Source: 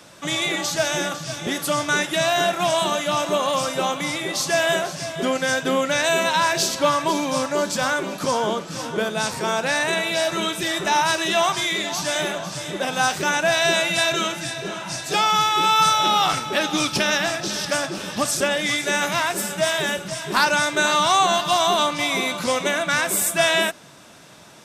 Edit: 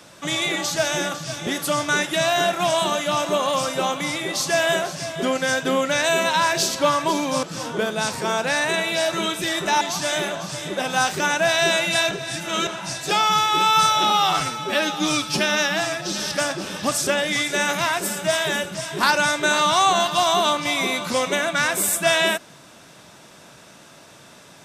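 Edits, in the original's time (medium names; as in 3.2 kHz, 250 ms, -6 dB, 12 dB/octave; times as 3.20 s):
7.43–8.62 s: delete
11.00–11.84 s: delete
14.14–14.70 s: reverse
16.13–17.52 s: stretch 1.5×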